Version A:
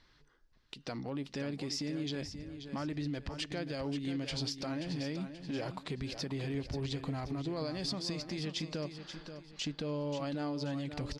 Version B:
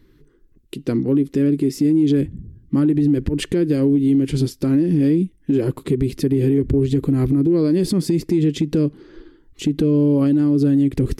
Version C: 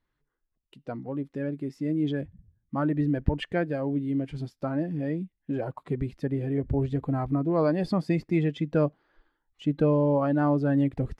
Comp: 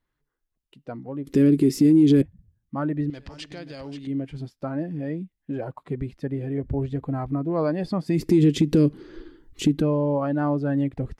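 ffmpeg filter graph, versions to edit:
-filter_complex "[1:a]asplit=2[s0][s1];[2:a]asplit=4[s2][s3][s4][s5];[s2]atrim=end=1.272[s6];[s0]atrim=start=1.268:end=2.222[s7];[s3]atrim=start=2.218:end=3.102[s8];[0:a]atrim=start=3.098:end=4.072[s9];[s4]atrim=start=4.068:end=8.29[s10];[s1]atrim=start=8.05:end=9.9[s11];[s5]atrim=start=9.66[s12];[s6][s7]acrossfade=d=0.004:c1=hsin:c2=hsin[s13];[s13][s8]acrossfade=d=0.004:c1=hsin:c2=hsin[s14];[s14][s9]acrossfade=d=0.004:c1=hsin:c2=hsin[s15];[s15][s10]acrossfade=d=0.004:c1=hsin:c2=hsin[s16];[s16][s11]acrossfade=d=0.24:c1=tri:c2=tri[s17];[s17][s12]acrossfade=d=0.24:c1=tri:c2=tri"

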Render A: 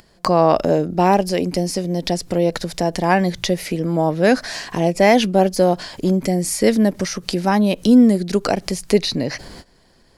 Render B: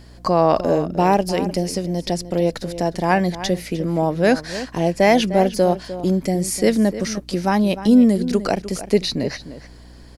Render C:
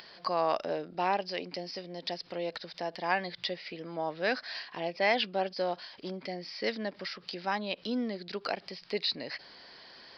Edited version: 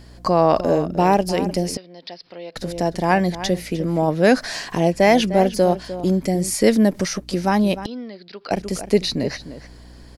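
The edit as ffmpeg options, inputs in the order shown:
-filter_complex "[2:a]asplit=2[s0][s1];[0:a]asplit=2[s2][s3];[1:a]asplit=5[s4][s5][s6][s7][s8];[s4]atrim=end=1.772[s9];[s0]atrim=start=1.768:end=2.562[s10];[s5]atrim=start=2.558:end=4.082[s11];[s2]atrim=start=4.078:end=4.922[s12];[s6]atrim=start=4.918:end=6.542[s13];[s3]atrim=start=6.538:end=7.182[s14];[s7]atrim=start=7.178:end=7.862[s15];[s1]atrim=start=7.858:end=8.512[s16];[s8]atrim=start=8.508[s17];[s9][s10]acrossfade=d=0.004:c1=hsin:c2=hsin[s18];[s18][s11]acrossfade=d=0.004:c1=hsin:c2=hsin[s19];[s19][s12]acrossfade=d=0.004:c1=hsin:c2=hsin[s20];[s20][s13]acrossfade=d=0.004:c1=hsin:c2=hsin[s21];[s21][s14]acrossfade=d=0.004:c1=hsin:c2=hsin[s22];[s22][s15]acrossfade=d=0.004:c1=hsin:c2=hsin[s23];[s23][s16]acrossfade=d=0.004:c1=hsin:c2=hsin[s24];[s24][s17]acrossfade=d=0.004:c1=hsin:c2=hsin"

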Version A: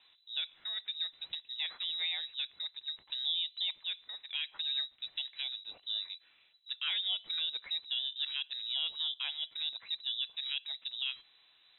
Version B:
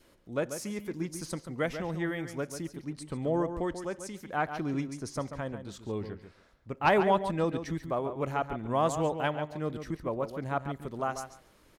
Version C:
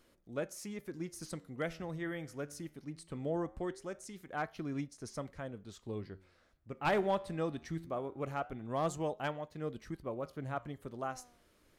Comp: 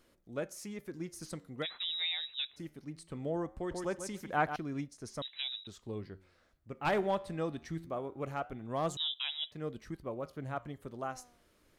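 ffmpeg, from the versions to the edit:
-filter_complex "[0:a]asplit=3[s0][s1][s2];[2:a]asplit=5[s3][s4][s5][s6][s7];[s3]atrim=end=1.66[s8];[s0]atrim=start=1.62:end=2.6[s9];[s4]atrim=start=2.56:end=3.712[s10];[1:a]atrim=start=3.708:end=4.562[s11];[s5]atrim=start=4.558:end=5.222[s12];[s1]atrim=start=5.218:end=5.672[s13];[s6]atrim=start=5.668:end=8.972[s14];[s2]atrim=start=8.968:end=9.522[s15];[s7]atrim=start=9.518[s16];[s8][s9]acrossfade=d=0.04:c1=tri:c2=tri[s17];[s17][s10]acrossfade=d=0.04:c1=tri:c2=tri[s18];[s18][s11]acrossfade=d=0.004:c1=hsin:c2=hsin[s19];[s19][s12]acrossfade=d=0.004:c1=hsin:c2=hsin[s20];[s20][s13]acrossfade=d=0.004:c1=hsin:c2=hsin[s21];[s21][s14]acrossfade=d=0.004:c1=hsin:c2=hsin[s22];[s22][s15]acrossfade=d=0.004:c1=hsin:c2=hsin[s23];[s23][s16]acrossfade=d=0.004:c1=hsin:c2=hsin"

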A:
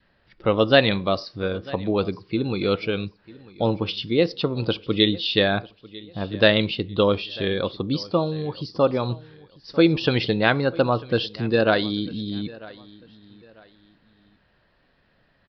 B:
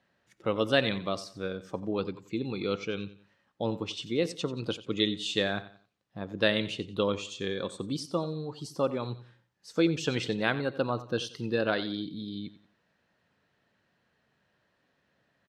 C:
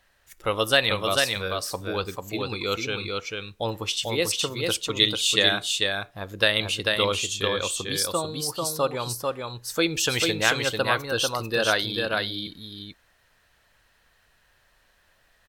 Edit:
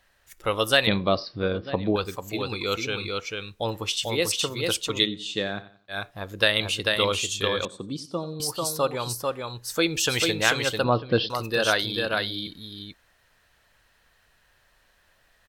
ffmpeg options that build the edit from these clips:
-filter_complex "[0:a]asplit=2[s0][s1];[1:a]asplit=2[s2][s3];[2:a]asplit=5[s4][s5][s6][s7][s8];[s4]atrim=end=0.872[s9];[s0]atrim=start=0.868:end=1.962[s10];[s5]atrim=start=1.958:end=5.09[s11];[s2]atrim=start=4.99:end=5.98[s12];[s6]atrim=start=5.88:end=7.652[s13];[s3]atrim=start=7.648:end=8.402[s14];[s7]atrim=start=8.398:end=10.842[s15];[s1]atrim=start=10.838:end=11.302[s16];[s8]atrim=start=11.298[s17];[s9][s10]acrossfade=d=0.004:c1=hsin:c2=hsin[s18];[s18][s11]acrossfade=d=0.004:c1=hsin:c2=hsin[s19];[s19][s12]acrossfade=d=0.1:c1=tri:c2=tri[s20];[s20][s13]acrossfade=d=0.1:c1=tri:c2=tri[s21];[s21][s14]acrossfade=d=0.004:c1=hsin:c2=hsin[s22];[s22][s15]acrossfade=d=0.004:c1=hsin:c2=hsin[s23];[s23][s16]acrossfade=d=0.004:c1=hsin:c2=hsin[s24];[s24][s17]acrossfade=d=0.004:c1=hsin:c2=hsin"

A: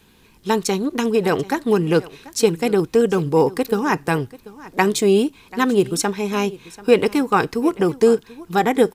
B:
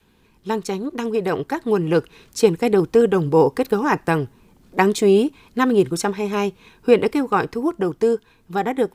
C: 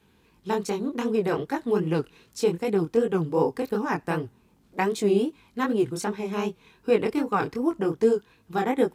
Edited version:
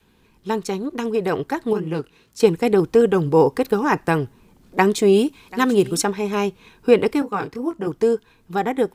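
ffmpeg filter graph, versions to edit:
-filter_complex "[2:a]asplit=2[s0][s1];[1:a]asplit=4[s2][s3][s4][s5];[s2]atrim=end=1.732[s6];[s0]atrim=start=1.728:end=2.402[s7];[s3]atrim=start=2.398:end=5.132[s8];[0:a]atrim=start=5.128:end=6.032[s9];[s4]atrim=start=6.028:end=7.222[s10];[s1]atrim=start=7.218:end=7.872[s11];[s5]atrim=start=7.868[s12];[s6][s7]acrossfade=d=0.004:c1=hsin:c2=hsin[s13];[s13][s8]acrossfade=d=0.004:c1=hsin:c2=hsin[s14];[s14][s9]acrossfade=d=0.004:c1=hsin:c2=hsin[s15];[s15][s10]acrossfade=d=0.004:c1=hsin:c2=hsin[s16];[s16][s11]acrossfade=d=0.004:c1=hsin:c2=hsin[s17];[s17][s12]acrossfade=d=0.004:c1=hsin:c2=hsin"

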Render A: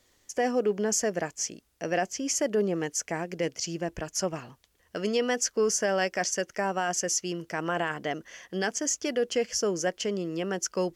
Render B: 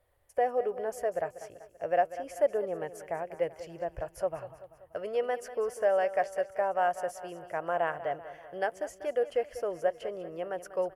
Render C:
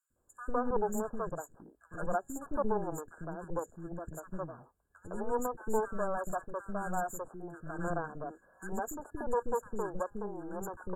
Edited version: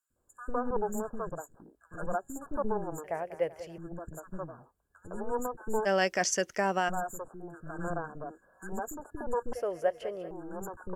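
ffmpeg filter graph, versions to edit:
-filter_complex "[1:a]asplit=2[s0][s1];[2:a]asplit=4[s2][s3][s4][s5];[s2]atrim=end=3.042[s6];[s0]atrim=start=3.038:end=3.782[s7];[s3]atrim=start=3.778:end=5.87[s8];[0:a]atrim=start=5.85:end=6.9[s9];[s4]atrim=start=6.88:end=9.532[s10];[s1]atrim=start=9.528:end=10.312[s11];[s5]atrim=start=10.308[s12];[s6][s7]acrossfade=d=0.004:c1=hsin:c2=hsin[s13];[s13][s8]acrossfade=d=0.004:c1=hsin:c2=hsin[s14];[s14][s9]acrossfade=d=0.02:c1=tri:c2=tri[s15];[s15][s10]acrossfade=d=0.02:c1=tri:c2=tri[s16];[s16][s11]acrossfade=d=0.004:c1=hsin:c2=hsin[s17];[s17][s12]acrossfade=d=0.004:c1=hsin:c2=hsin"

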